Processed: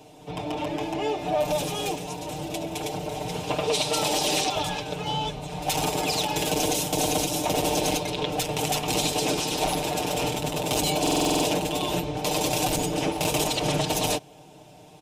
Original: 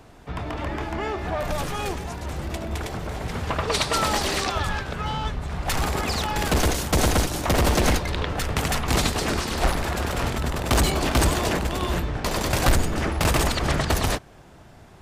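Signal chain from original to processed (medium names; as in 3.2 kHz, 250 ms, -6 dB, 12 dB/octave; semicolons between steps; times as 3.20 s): high-pass 280 Hz 6 dB/octave; high-order bell 1.5 kHz -13.5 dB 1.1 oct; band-stop 4.5 kHz, Q 12; comb 6.6 ms, depth 82%; peak limiter -16 dBFS, peak gain reduction 8.5 dB; on a send: reverse echo 74 ms -18 dB; on the sum: buffer glitch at 11.02 s, samples 2048, times 8; trim +1.5 dB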